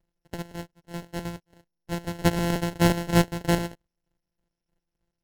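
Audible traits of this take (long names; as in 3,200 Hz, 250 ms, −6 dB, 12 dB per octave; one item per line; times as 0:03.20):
a buzz of ramps at a fixed pitch in blocks of 256 samples
chopped level 3.2 Hz, depth 60%, duty 35%
aliases and images of a low sample rate 1,200 Hz, jitter 0%
SBC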